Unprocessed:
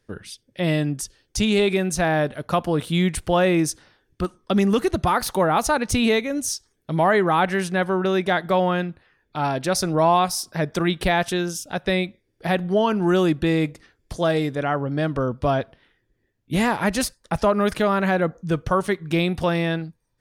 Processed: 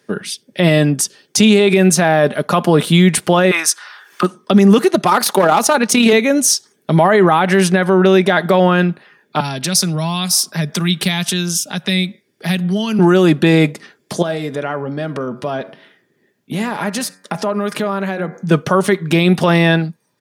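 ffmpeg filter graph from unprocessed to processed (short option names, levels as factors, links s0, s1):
-filter_complex "[0:a]asettb=1/sr,asplit=3[s0][s1][s2];[s0]atrim=end=3.514[s3];[s1]atrim=start=3.51:end=4.23,asetpts=PTS-STARTPTS,afade=t=in:d=0.004:c=qsin,afade=t=out:st=0.716:d=0.004:c=qsin,highpass=f=1200:t=q:w=2.2,acompressor=mode=upward:threshold=0.00891:ratio=2.5:attack=3.2:release=140:knee=2.83:detection=peak[s4];[s2]atrim=start=4.226[s5];[s3][s4]acrossfade=d=0.004:c1=hsin:c2=qsin[s6];[s6][s5]acrossfade=d=0.004:c1=qsin:c2=hsin,asettb=1/sr,asplit=3[s7][s8][s9];[s7]atrim=end=4.784[s10];[s8]atrim=start=4.78:end=6.13,asetpts=PTS-STARTPTS,afade=t=in:d=0.004:c=qsin,afade=t=out:st=1.346:d=0.004:c=qsin,highpass=190,asoftclip=type=hard:threshold=0.2,tremolo=f=35:d=0.462[s11];[s9]atrim=start=6.126[s12];[s10][s11]acrossfade=d=0.004:c1=hsin:c2=qsin[s13];[s13][s12]acrossfade=d=0.004:c1=qsin:c2=hsin,asettb=1/sr,asplit=3[s14][s15][s16];[s14]atrim=end=9.404[s17];[s15]atrim=start=9.4:end=12.99,asetpts=PTS-STARTPTS,afade=t=in:d=0.004:c=qsin,afade=t=out:st=3.586:d=0.004:c=qsin,acrossover=split=190|3000[s18][s19][s20];[s19]acompressor=threshold=0.0178:ratio=4:attack=3.2:release=140:knee=2.83:detection=peak[s21];[s18][s21][s20]amix=inputs=3:normalize=0,equalizer=f=470:t=o:w=2.2:g=-5.5[s22];[s16]atrim=start=12.986[s23];[s17][s22]acrossfade=d=0.004:c1=hsin:c2=qsin[s24];[s24][s23]acrossfade=d=0.004:c1=qsin:c2=hsin,asettb=1/sr,asplit=3[s25][s26][s27];[s25]atrim=end=14.224[s28];[s26]atrim=start=14.22:end=18.51,asetpts=PTS-STARTPTS,afade=t=in:d=0.004:c=qsin,afade=t=out:st=4.286:d=0.004:c=qsin,acompressor=threshold=0.0282:ratio=5:attack=3.2:release=140:knee=1:detection=peak,bandreject=f=93.21:t=h:w=4,bandreject=f=186.42:t=h:w=4,bandreject=f=279.63:t=h:w=4,bandreject=f=372.84:t=h:w=4,bandreject=f=466.05:t=h:w=4,bandreject=f=559.26:t=h:w=4,bandreject=f=652.47:t=h:w=4,bandreject=f=745.68:t=h:w=4,bandreject=f=838.89:t=h:w=4,bandreject=f=932.1:t=h:w=4,bandreject=f=1025.31:t=h:w=4,bandreject=f=1118.52:t=h:w=4,bandreject=f=1211.73:t=h:w=4,bandreject=f=1304.94:t=h:w=4,bandreject=f=1398.15:t=h:w=4,bandreject=f=1491.36:t=h:w=4,bandreject=f=1584.57:t=h:w=4,bandreject=f=1677.78:t=h:w=4,bandreject=f=1770.99:t=h:w=4,bandreject=f=1864.2:t=h:w=4,bandreject=f=1957.41:t=h:w=4,bandreject=f=2050.62:t=h:w=4,bandreject=f=2143.83:t=h:w=4,bandreject=f=2237.04:t=h:w=4,bandreject=f=2330.25:t=h:w=4,bandreject=f=2423.46:t=h:w=4[s29];[s27]atrim=start=18.506[s30];[s28][s29]acrossfade=d=0.004:c1=hsin:c2=qsin[s31];[s31][s30]acrossfade=d=0.004:c1=qsin:c2=hsin,highpass=f=150:w=0.5412,highpass=f=150:w=1.3066,aecho=1:1:4.9:0.31,alimiter=level_in=5.01:limit=0.891:release=50:level=0:latency=1,volume=0.891"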